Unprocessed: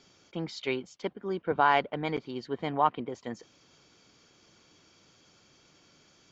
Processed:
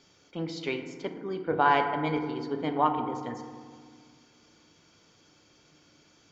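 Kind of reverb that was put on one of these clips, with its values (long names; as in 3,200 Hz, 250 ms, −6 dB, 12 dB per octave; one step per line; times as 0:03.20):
feedback delay network reverb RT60 1.8 s, low-frequency decay 1.4×, high-frequency decay 0.35×, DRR 4.5 dB
level −1 dB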